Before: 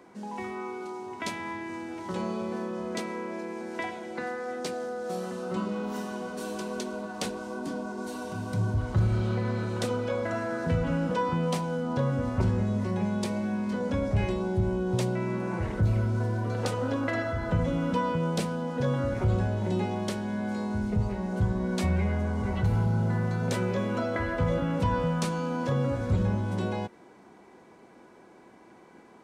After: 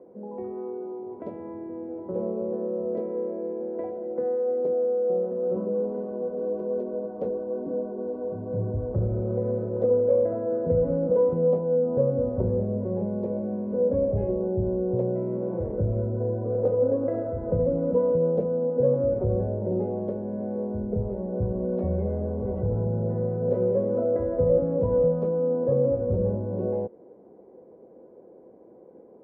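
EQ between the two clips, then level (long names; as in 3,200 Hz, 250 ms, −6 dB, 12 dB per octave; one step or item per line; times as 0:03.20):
low-pass with resonance 510 Hz, resonance Q 4.9
−2.5 dB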